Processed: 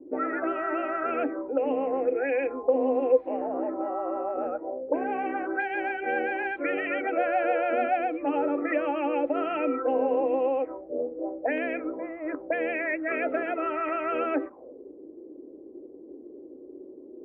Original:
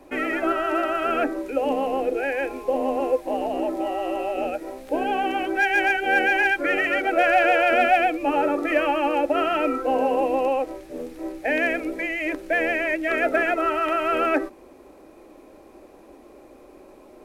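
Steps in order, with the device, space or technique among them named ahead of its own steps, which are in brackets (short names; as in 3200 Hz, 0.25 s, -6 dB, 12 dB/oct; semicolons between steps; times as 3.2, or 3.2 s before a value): 2.21–3.25 comb 4.1 ms, depth 52%; envelope filter bass rig (envelope low-pass 330–4800 Hz up, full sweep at -17 dBFS; speaker cabinet 62–2000 Hz, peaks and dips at 94 Hz -7 dB, 280 Hz +6 dB, 490 Hz +7 dB, 1700 Hz -5 dB); gain -8 dB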